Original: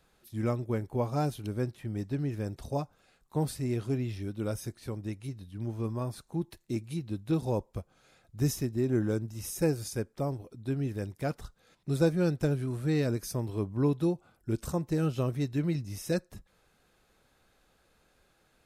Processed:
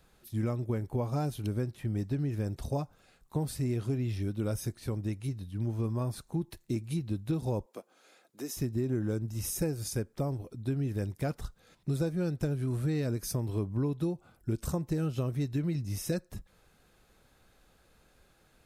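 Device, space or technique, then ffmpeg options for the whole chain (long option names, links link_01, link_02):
ASMR close-microphone chain: -filter_complex "[0:a]lowshelf=frequency=200:gain=5,acompressor=threshold=-29dB:ratio=6,highshelf=frequency=9500:gain=3.5,asettb=1/sr,asplit=3[link_01][link_02][link_03];[link_01]atrim=end=7.664[link_04];[link_02]atrim=start=7.66:end=8.57,asetpts=PTS-STARTPTS,afade=type=in:duration=0.004:curve=qsin,afade=type=out:start_time=0.906:duration=0.004:curve=qsin,highpass=frequency=280:width=0.5412,highpass=frequency=280:width=1.3066[link_05];[link_03]atrim=start=8.566[link_06];[link_04][link_05]acrossfade=duration=0.004:curve1=hsin:curve2=qsin[link_07];[link_07][link_06]acrossfade=duration=0.004:curve1=qsin:curve2=hsin,volume=1.5dB"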